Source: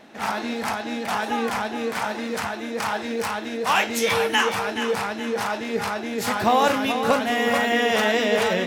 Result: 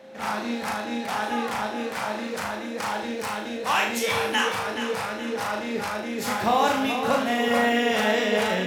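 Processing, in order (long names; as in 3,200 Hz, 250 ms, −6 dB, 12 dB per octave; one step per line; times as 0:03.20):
steady tone 530 Hz −43 dBFS
flutter between parallel walls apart 6.5 metres, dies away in 0.47 s
level −4 dB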